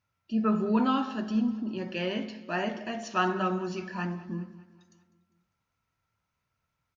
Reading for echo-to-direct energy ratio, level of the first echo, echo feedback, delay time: -17.5 dB, -19.0 dB, 55%, 200 ms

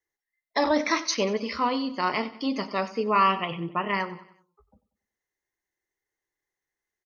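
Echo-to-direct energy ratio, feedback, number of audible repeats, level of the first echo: -16.0 dB, 46%, 3, -17.0 dB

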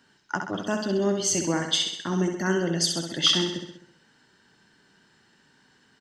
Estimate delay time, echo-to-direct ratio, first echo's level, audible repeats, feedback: 65 ms, -4.5 dB, -6.0 dB, 6, 56%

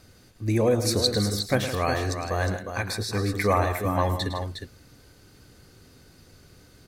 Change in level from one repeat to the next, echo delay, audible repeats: no regular repeats, 108 ms, 3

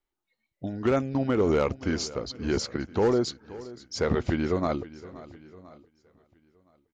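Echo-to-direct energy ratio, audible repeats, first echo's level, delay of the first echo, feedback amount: -16.5 dB, 3, -18.0 dB, 525 ms, no regular repeats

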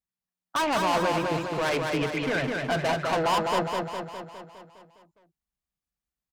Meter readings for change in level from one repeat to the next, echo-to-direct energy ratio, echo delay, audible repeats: -4.5 dB, -1.5 dB, 205 ms, 7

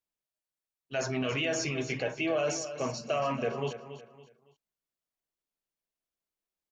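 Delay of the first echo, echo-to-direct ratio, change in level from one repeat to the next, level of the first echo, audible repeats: 280 ms, -11.5 dB, -9.5 dB, -12.0 dB, 3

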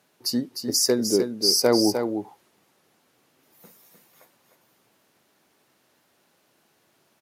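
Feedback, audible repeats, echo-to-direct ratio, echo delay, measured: no regular repeats, 1, -7.0 dB, 304 ms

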